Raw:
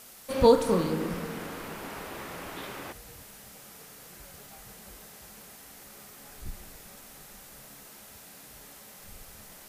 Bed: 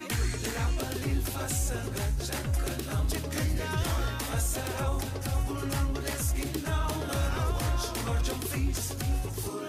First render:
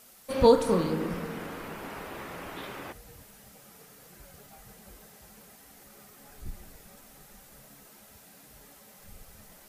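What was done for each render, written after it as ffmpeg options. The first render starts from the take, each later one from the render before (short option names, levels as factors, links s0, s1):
-af "afftdn=nr=6:nf=-50"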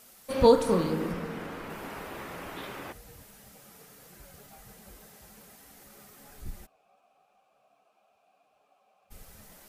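-filter_complex "[0:a]asettb=1/sr,asplit=3[s0][s1][s2];[s0]atrim=end=1.124[s3];[s1]atrim=start=1.12:end=1.7,asetpts=PTS-STARTPTS,afade=t=in:d=0.004:c=qsin,afade=t=out:st=0.576:d=0.004:c=qsin,highshelf=f=7000:g=-7.5[s4];[s2]atrim=start=1.696[s5];[s3][s4]acrossfade=d=0.004:c1=hsin:c2=qsin[s6];[s6][s5]acrossfade=d=0.004:c1=qsin:c2=hsin,asplit=3[s7][s8][s9];[s7]afade=t=out:st=6.65:d=0.02[s10];[s8]asplit=3[s11][s12][s13];[s11]bandpass=f=730:t=q:w=8,volume=1[s14];[s12]bandpass=f=1090:t=q:w=8,volume=0.501[s15];[s13]bandpass=f=2440:t=q:w=8,volume=0.355[s16];[s14][s15][s16]amix=inputs=3:normalize=0,afade=t=in:st=6.65:d=0.02,afade=t=out:st=9.1:d=0.02[s17];[s9]afade=t=in:st=9.1:d=0.02[s18];[s10][s17][s18]amix=inputs=3:normalize=0"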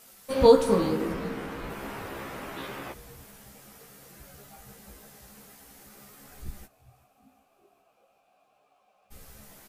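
-filter_complex "[0:a]asplit=2[s0][s1];[s1]adelay=15,volume=0.668[s2];[s0][s2]amix=inputs=2:normalize=0,asplit=6[s3][s4][s5][s6][s7][s8];[s4]adelay=384,afreqshift=-140,volume=0.0891[s9];[s5]adelay=768,afreqshift=-280,volume=0.0569[s10];[s6]adelay=1152,afreqshift=-420,volume=0.0363[s11];[s7]adelay=1536,afreqshift=-560,volume=0.0234[s12];[s8]adelay=1920,afreqshift=-700,volume=0.015[s13];[s3][s9][s10][s11][s12][s13]amix=inputs=6:normalize=0"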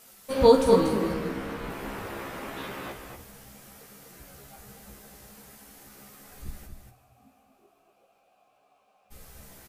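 -filter_complex "[0:a]asplit=2[s0][s1];[s1]adelay=49,volume=0.266[s2];[s0][s2]amix=inputs=2:normalize=0,aecho=1:1:238:0.447"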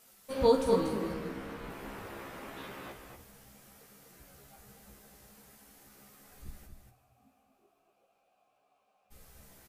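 -af "volume=0.422"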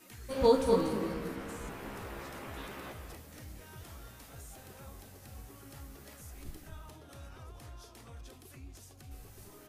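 -filter_complex "[1:a]volume=0.0944[s0];[0:a][s0]amix=inputs=2:normalize=0"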